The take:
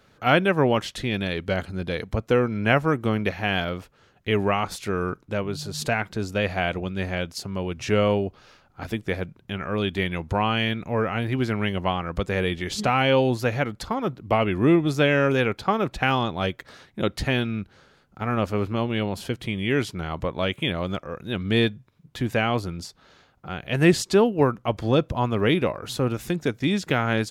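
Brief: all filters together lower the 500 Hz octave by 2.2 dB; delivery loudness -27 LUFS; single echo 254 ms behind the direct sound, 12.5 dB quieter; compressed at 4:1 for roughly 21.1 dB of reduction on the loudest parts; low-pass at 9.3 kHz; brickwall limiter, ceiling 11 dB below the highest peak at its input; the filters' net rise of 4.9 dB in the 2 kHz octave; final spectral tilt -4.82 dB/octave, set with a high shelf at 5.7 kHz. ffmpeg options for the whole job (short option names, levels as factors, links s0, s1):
-af "lowpass=9300,equalizer=f=500:t=o:g=-3,equalizer=f=2000:t=o:g=6,highshelf=f=5700:g=3.5,acompressor=threshold=0.0112:ratio=4,alimiter=level_in=2.11:limit=0.0631:level=0:latency=1,volume=0.473,aecho=1:1:254:0.237,volume=5.62"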